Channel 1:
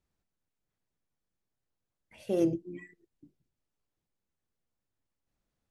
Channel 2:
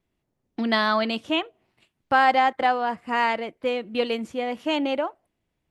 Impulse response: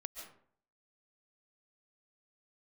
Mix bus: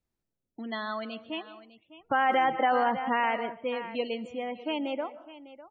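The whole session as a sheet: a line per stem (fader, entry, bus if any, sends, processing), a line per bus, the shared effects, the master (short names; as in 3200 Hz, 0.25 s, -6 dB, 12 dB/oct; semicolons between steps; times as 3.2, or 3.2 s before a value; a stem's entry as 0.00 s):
-3.5 dB, 0.00 s, no send, no echo send, auto duck -9 dB, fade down 0.30 s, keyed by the second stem
1.67 s -13 dB -> 2.06 s 0 dB -> 3.04 s 0 dB -> 3.65 s -11 dB, 0.00 s, send -7.5 dB, echo send -14.5 dB, vocal rider 2 s; loudest bins only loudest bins 32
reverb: on, RT60 0.55 s, pre-delay 0.1 s
echo: echo 0.602 s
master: limiter -16 dBFS, peak gain reduction 9.5 dB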